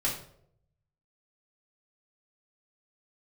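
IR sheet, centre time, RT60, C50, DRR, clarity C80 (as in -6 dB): 29 ms, 0.70 s, 6.5 dB, -5.5 dB, 10.5 dB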